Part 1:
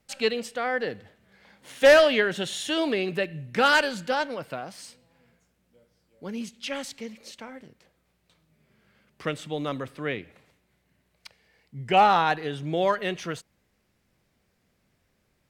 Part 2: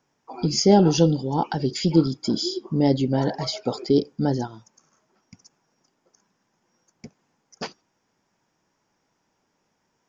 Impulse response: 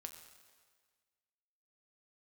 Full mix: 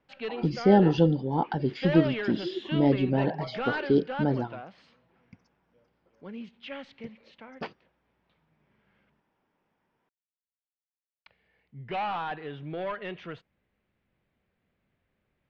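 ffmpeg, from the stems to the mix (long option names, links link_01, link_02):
-filter_complex "[0:a]asoftclip=type=tanh:threshold=-21.5dB,volume=-6dB,asplit=3[link_01][link_02][link_03];[link_01]atrim=end=9.2,asetpts=PTS-STARTPTS,afade=type=out:start_time=9.196:duration=0.004:curve=hsin[link_04];[link_02]atrim=start=9.2:end=11.26,asetpts=PTS-STARTPTS,volume=0[link_05];[link_03]atrim=start=11.26,asetpts=PTS-STARTPTS,afade=type=in:duration=0.004:curve=hsin[link_06];[link_04][link_05][link_06]concat=n=3:v=0:a=1[link_07];[1:a]volume=-3.5dB[link_08];[link_07][link_08]amix=inputs=2:normalize=0,lowpass=frequency=3300:width=0.5412,lowpass=frequency=3300:width=1.3066"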